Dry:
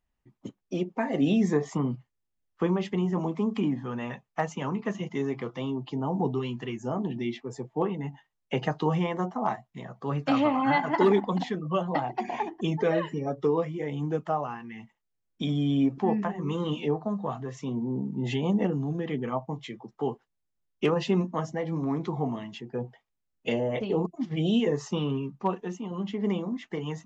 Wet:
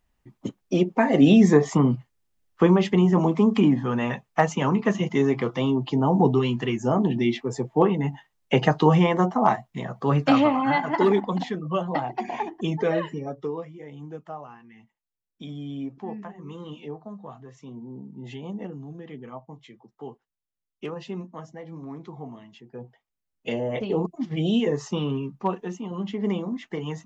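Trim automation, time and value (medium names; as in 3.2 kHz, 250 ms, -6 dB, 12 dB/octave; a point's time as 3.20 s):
10.17 s +8.5 dB
10.65 s +1.5 dB
13.04 s +1.5 dB
13.72 s -9 dB
22.49 s -9 dB
23.83 s +2 dB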